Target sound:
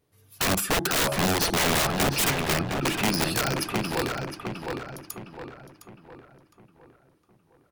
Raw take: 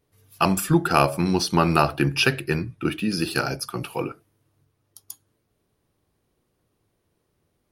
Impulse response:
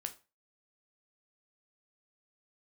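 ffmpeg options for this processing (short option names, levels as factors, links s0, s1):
-filter_complex "[0:a]highpass=f=46:p=1,aeval=exprs='(mod(7.94*val(0)+1,2)-1)/7.94':c=same,asplit=2[s0][s1];[s1]adelay=710,lowpass=f=2900:p=1,volume=0.631,asplit=2[s2][s3];[s3]adelay=710,lowpass=f=2900:p=1,volume=0.45,asplit=2[s4][s5];[s5]adelay=710,lowpass=f=2900:p=1,volume=0.45,asplit=2[s6][s7];[s7]adelay=710,lowpass=f=2900:p=1,volume=0.45,asplit=2[s8][s9];[s9]adelay=710,lowpass=f=2900:p=1,volume=0.45,asplit=2[s10][s11];[s11]adelay=710,lowpass=f=2900:p=1,volume=0.45[s12];[s2][s4][s6][s8][s10][s12]amix=inputs=6:normalize=0[s13];[s0][s13]amix=inputs=2:normalize=0"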